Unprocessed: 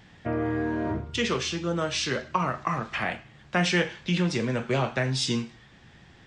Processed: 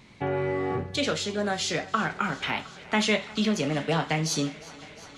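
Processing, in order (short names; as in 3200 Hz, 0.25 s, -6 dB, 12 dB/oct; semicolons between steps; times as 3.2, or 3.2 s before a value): dynamic EQ 7000 Hz, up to -7 dB, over -54 dBFS, Q 4; varispeed +21%; thinning echo 0.356 s, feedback 84%, high-pass 220 Hz, level -20 dB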